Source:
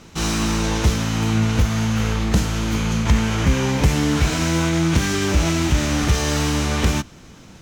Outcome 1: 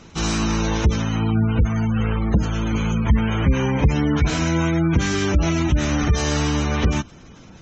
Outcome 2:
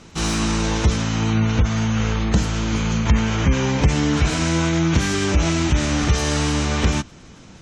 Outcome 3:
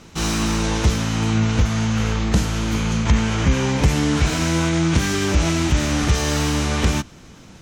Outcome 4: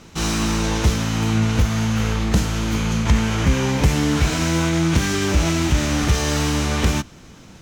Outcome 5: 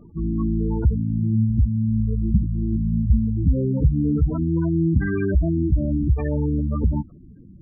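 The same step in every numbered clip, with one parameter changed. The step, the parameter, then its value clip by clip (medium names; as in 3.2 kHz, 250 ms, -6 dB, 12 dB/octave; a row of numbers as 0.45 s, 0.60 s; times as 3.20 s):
spectral gate, under each frame's peak: -25 dB, -35 dB, -45 dB, -60 dB, -10 dB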